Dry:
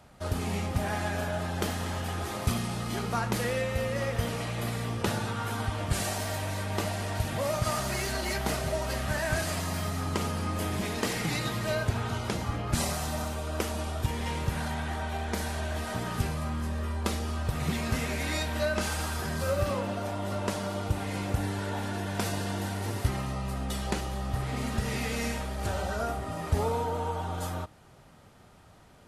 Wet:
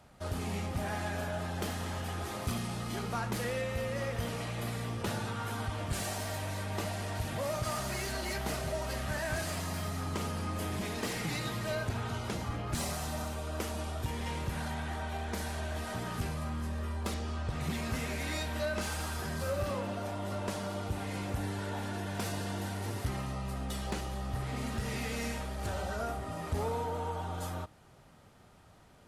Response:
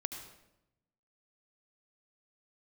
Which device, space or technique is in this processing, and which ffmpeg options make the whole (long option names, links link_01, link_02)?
saturation between pre-emphasis and de-emphasis: -filter_complex "[0:a]asettb=1/sr,asplit=3[link_01][link_02][link_03];[link_01]atrim=end=17.144[link_04];[link_02]atrim=start=17.14:end=17.61,asetpts=PTS-STARTPTS,afade=type=in:duration=0.004:curve=qsin,afade=type=out:start_time=0.466:duration=0.004:curve=qsin,lowpass=6900[link_05];[link_03]atrim=start=17.606[link_06];[link_04][link_05]acrossfade=duration=0.004:curve1=hsin:curve2=qsin[link_07];[link_07][link_06]acrossfade=duration=0.004:curve1=qsin:curve2=hsin,highshelf=frequency=4000:gain=7.5,asoftclip=type=tanh:threshold=-21.5dB,highshelf=frequency=4000:gain=-7.5,volume=-3.5dB"